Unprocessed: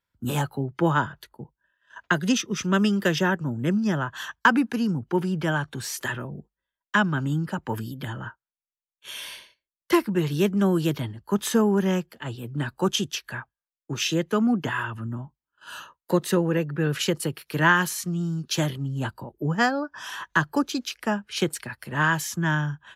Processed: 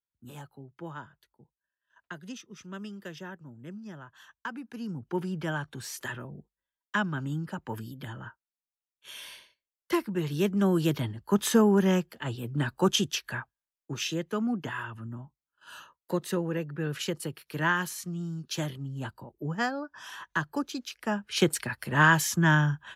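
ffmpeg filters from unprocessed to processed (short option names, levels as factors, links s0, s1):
-af "volume=2.82,afade=t=in:st=4.62:d=0.53:silence=0.251189,afade=t=in:st=10.11:d=1.06:silence=0.473151,afade=t=out:st=13.31:d=0.85:silence=0.446684,afade=t=in:st=20.99:d=0.53:silence=0.334965"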